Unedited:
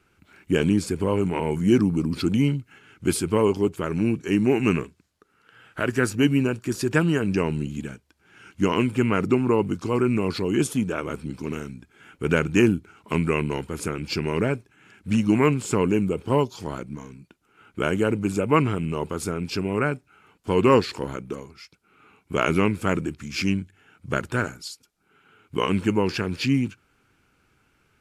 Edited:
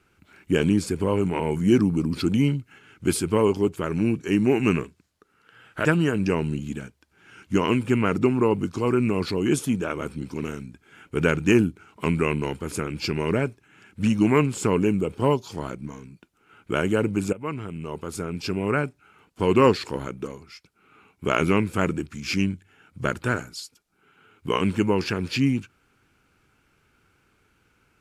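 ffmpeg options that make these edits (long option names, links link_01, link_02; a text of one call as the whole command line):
ffmpeg -i in.wav -filter_complex "[0:a]asplit=3[link_01][link_02][link_03];[link_01]atrim=end=5.852[link_04];[link_02]atrim=start=6.928:end=18.41,asetpts=PTS-STARTPTS,afade=type=out:start_time=11.478:duration=0.004:curve=hsin:silence=0.158489[link_05];[link_03]atrim=start=18.41,asetpts=PTS-STARTPTS,afade=type=in:duration=1.31:silence=0.158489[link_06];[link_05][link_06]concat=n=2:v=0:a=1[link_07];[link_04][link_07]acrossfade=duration=0.004:curve1=hsin:curve2=hsin" out.wav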